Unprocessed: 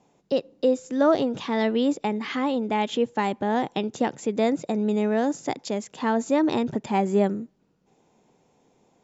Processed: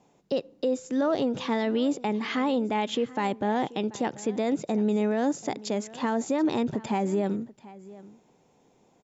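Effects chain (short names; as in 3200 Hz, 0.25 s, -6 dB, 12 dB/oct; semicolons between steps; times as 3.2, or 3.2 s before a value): limiter -18 dBFS, peak gain reduction 8 dB; on a send: echo 0.735 s -19.5 dB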